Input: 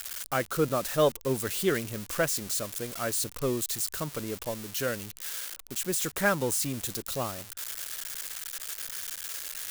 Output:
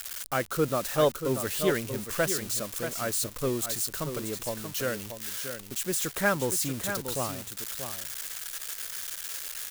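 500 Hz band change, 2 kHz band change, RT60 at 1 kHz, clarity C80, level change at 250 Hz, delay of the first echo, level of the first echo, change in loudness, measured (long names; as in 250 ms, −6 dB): +0.5 dB, +0.5 dB, no reverb audible, no reverb audible, +0.5 dB, 634 ms, −8.5 dB, +0.5 dB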